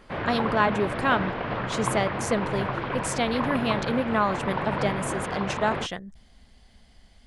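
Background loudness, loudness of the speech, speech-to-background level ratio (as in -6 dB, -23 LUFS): -30.0 LUFS, -28.0 LUFS, 2.0 dB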